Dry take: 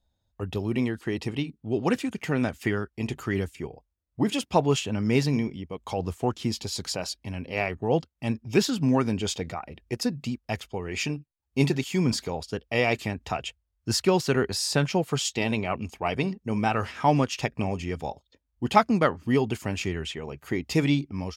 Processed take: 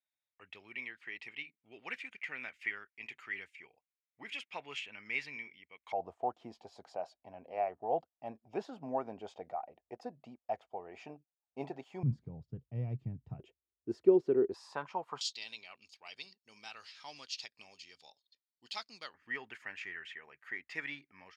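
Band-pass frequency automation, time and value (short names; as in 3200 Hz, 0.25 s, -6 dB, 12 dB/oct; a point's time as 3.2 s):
band-pass, Q 4.6
2200 Hz
from 5.92 s 710 Hz
from 12.03 s 130 Hz
from 13.4 s 370 Hz
from 14.54 s 1000 Hz
from 15.21 s 4400 Hz
from 19.14 s 1800 Hz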